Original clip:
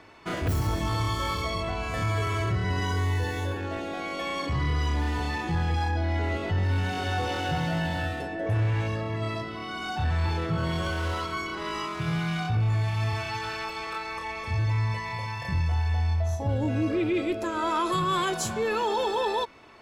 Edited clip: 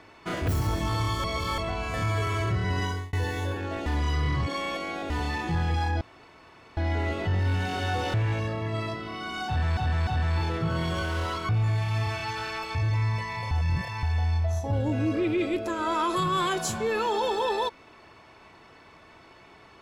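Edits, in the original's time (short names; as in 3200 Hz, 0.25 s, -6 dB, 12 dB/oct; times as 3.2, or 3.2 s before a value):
1.24–1.58 reverse
2.84–3.13 fade out
3.86–5.1 reverse
6.01 insert room tone 0.76 s
7.38–8.62 cut
9.95–10.25 loop, 3 plays
11.37–12.55 cut
13.81–14.51 cut
15.27–15.79 reverse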